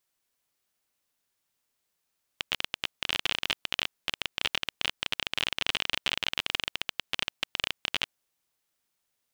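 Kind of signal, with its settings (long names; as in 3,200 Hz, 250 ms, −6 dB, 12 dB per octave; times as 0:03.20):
Geiger counter clicks 25 per second −9.5 dBFS 5.75 s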